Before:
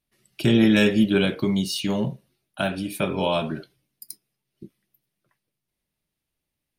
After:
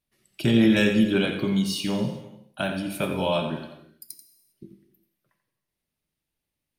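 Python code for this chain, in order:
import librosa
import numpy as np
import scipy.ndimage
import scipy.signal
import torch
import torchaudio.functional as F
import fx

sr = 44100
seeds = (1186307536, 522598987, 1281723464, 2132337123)

y = x + 10.0 ** (-10.0 / 20.0) * np.pad(x, (int(87 * sr / 1000.0), 0))[:len(x)]
y = fx.rev_gated(y, sr, seeds[0], gate_ms=430, shape='falling', drr_db=9.0)
y = y * 10.0 ** (-2.5 / 20.0)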